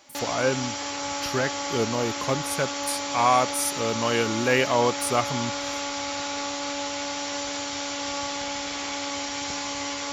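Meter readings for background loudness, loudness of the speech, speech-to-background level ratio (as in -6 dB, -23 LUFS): -29.5 LUFS, -26.0 LUFS, 3.5 dB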